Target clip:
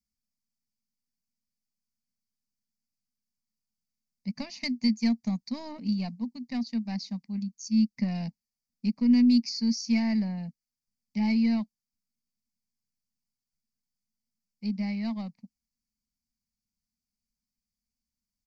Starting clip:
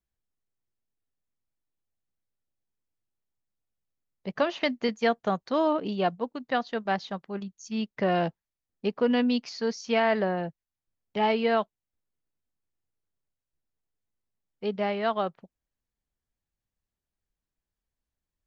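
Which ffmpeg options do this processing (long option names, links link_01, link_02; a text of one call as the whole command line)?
ffmpeg -i in.wav -af "aeval=exprs='0.237*(cos(1*acos(clip(val(0)/0.237,-1,1)))-cos(1*PI/2))+0.0376*(cos(2*acos(clip(val(0)/0.237,-1,1)))-cos(2*PI/2))':channel_layout=same,firequalizer=gain_entry='entry(140,0);entry(230,15);entry(340,-19);entry(930,-8);entry(1400,-22);entry(2200,4);entry(3200,-14);entry(4600,14);entry(8400,5)':delay=0.05:min_phase=1,volume=-5.5dB" out.wav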